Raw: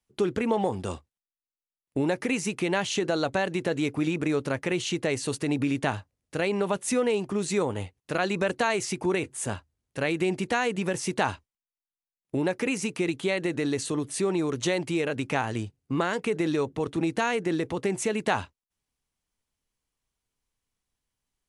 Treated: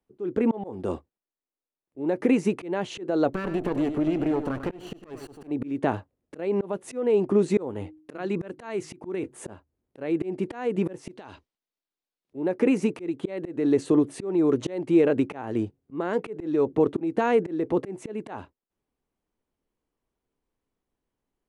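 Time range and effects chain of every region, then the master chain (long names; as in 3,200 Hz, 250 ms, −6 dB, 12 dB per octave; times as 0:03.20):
0:03.33–0:05.51: lower of the sound and its delayed copy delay 0.69 ms + downward compressor 3 to 1, threshold −30 dBFS + single-tap delay 98 ms −9.5 dB
0:07.68–0:09.24: hum removal 155.2 Hz, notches 2 + dynamic equaliser 580 Hz, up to −5 dB, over −38 dBFS, Q 1.1
0:11.11–0:12.35: parametric band 4,300 Hz +12.5 dB 1.8 octaves + downward compressor 16 to 1, threshold −34 dBFS
whole clip: drawn EQ curve 120 Hz 0 dB, 340 Hz +11 dB, 5,800 Hz −11 dB; volume swells 333 ms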